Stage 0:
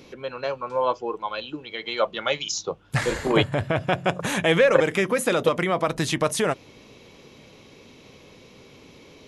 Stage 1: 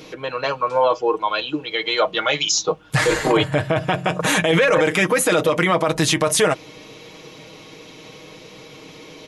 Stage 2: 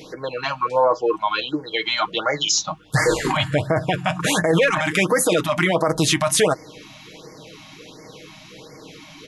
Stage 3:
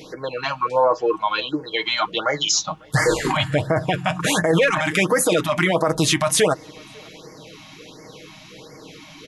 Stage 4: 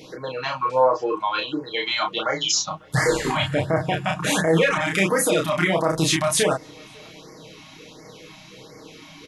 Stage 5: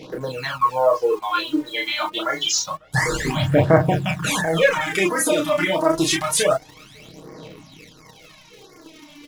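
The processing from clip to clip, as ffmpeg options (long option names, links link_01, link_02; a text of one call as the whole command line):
ffmpeg -i in.wav -af "lowshelf=frequency=210:gain=-7,aecho=1:1:6.4:0.65,alimiter=limit=-16dB:level=0:latency=1:release=19,volume=8dB" out.wav
ffmpeg -i in.wav -af "afftfilt=real='re*(1-between(b*sr/1024,390*pow(3200/390,0.5+0.5*sin(2*PI*1.4*pts/sr))/1.41,390*pow(3200/390,0.5+0.5*sin(2*PI*1.4*pts/sr))*1.41))':imag='im*(1-between(b*sr/1024,390*pow(3200/390,0.5+0.5*sin(2*PI*1.4*pts/sr))/1.41,390*pow(3200/390,0.5+0.5*sin(2*PI*1.4*pts/sr))*1.41))':win_size=1024:overlap=0.75" out.wav
ffmpeg -i in.wav -filter_complex "[0:a]asplit=2[link_01][link_02];[link_02]adelay=548.1,volume=-27dB,highshelf=frequency=4000:gain=-12.3[link_03];[link_01][link_03]amix=inputs=2:normalize=0" out.wav
ffmpeg -i in.wav -filter_complex "[0:a]asplit=2[link_01][link_02];[link_02]adelay=31,volume=-3dB[link_03];[link_01][link_03]amix=inputs=2:normalize=0,volume=-3.5dB" out.wav
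ffmpeg -i in.wav -filter_complex "[0:a]asplit=2[link_01][link_02];[link_02]acrusher=bits=5:mix=0:aa=0.000001,volume=-7.5dB[link_03];[link_01][link_03]amix=inputs=2:normalize=0,aphaser=in_gain=1:out_gain=1:delay=3.4:decay=0.68:speed=0.27:type=sinusoidal,volume=-5dB" out.wav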